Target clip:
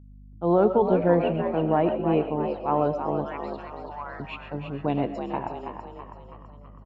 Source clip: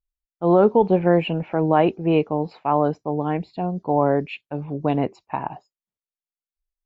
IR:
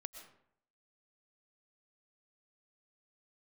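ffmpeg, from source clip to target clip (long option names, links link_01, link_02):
-filter_complex "[0:a]asettb=1/sr,asplit=3[link_01][link_02][link_03];[link_01]atrim=end=1.174[link_04];[link_02]atrim=start=1.17:end=2.68,asetpts=PTS-STARTPTS,afade=type=in:duration=0.004:curve=qsin,afade=type=out:start_time=1.506:duration=0.004:curve=qsin,highshelf=frequency=2000:gain=-9[link_05];[link_03]atrim=start=2.676[link_06];[link_04][link_05]acrossfade=duration=0.004:curve1=hsin:curve2=qsin[link_07];[link_07][link_06]acrossfade=duration=0.004:curve1=qsin:curve2=hsin,asettb=1/sr,asplit=3[link_08][link_09][link_10];[link_08]atrim=end=3.244[link_11];[link_09]atrim=start=3.24:end=4.2,asetpts=PTS-STARTPTS,afade=type=in:duration=0.004:curve=qsin,afade=type=out:start_time=0.956:duration=0.004:curve=qsin,highpass=frequency=1100:width=0.5412,highpass=frequency=1100:width=1.3066[link_12];[link_10]atrim=start=4.196[link_13];[link_11][link_12]acrossfade=duration=0.004:curve1=hsin:curve2=qsin[link_14];[link_14][link_13]acrossfade=duration=0.004:curve1=qsin:curve2=hsin,aeval=exprs='val(0)+0.00794*(sin(2*PI*50*n/s)+sin(2*PI*2*50*n/s)/2+sin(2*PI*3*50*n/s)/3+sin(2*PI*4*50*n/s)/4+sin(2*PI*5*50*n/s)/5)':channel_layout=same,asplit=7[link_15][link_16][link_17][link_18][link_19][link_20][link_21];[link_16]adelay=327,afreqshift=59,volume=-7.5dB[link_22];[link_17]adelay=654,afreqshift=118,volume=-13.3dB[link_23];[link_18]adelay=981,afreqshift=177,volume=-19.2dB[link_24];[link_19]adelay=1308,afreqshift=236,volume=-25dB[link_25];[link_20]adelay=1635,afreqshift=295,volume=-30.9dB[link_26];[link_21]adelay=1962,afreqshift=354,volume=-36.7dB[link_27];[link_15][link_22][link_23][link_24][link_25][link_26][link_27]amix=inputs=7:normalize=0[link_28];[1:a]atrim=start_sample=2205,afade=type=out:start_time=0.19:duration=0.01,atrim=end_sample=8820[link_29];[link_28][link_29]afir=irnorm=-1:irlink=0"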